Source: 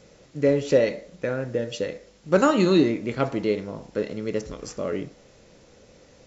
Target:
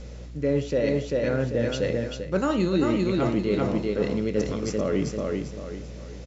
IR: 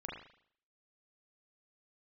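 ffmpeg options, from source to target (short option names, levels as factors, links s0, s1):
-af "highpass=140,highshelf=f=3300:g=9.5,aecho=1:1:393|786|1179|1572:0.501|0.175|0.0614|0.0215,areverse,acompressor=threshold=0.0447:ratio=6,areverse,aeval=exprs='val(0)+0.002*(sin(2*PI*60*n/s)+sin(2*PI*2*60*n/s)/2+sin(2*PI*3*60*n/s)/3+sin(2*PI*4*60*n/s)/4+sin(2*PI*5*60*n/s)/5)':c=same,aemphasis=mode=reproduction:type=bsi,volume=1.5"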